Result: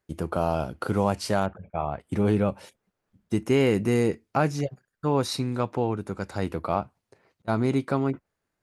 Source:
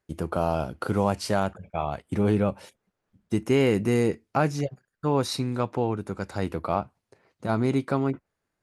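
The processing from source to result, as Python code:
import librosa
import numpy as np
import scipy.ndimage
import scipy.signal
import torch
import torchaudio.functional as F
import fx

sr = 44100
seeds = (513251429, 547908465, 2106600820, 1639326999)

y = fx.lowpass(x, sr, hz=2000.0, slope=12, at=(1.45, 1.99), fade=0.02)
y = fx.auto_swell(y, sr, attack_ms=673.0, at=(6.73, 7.48))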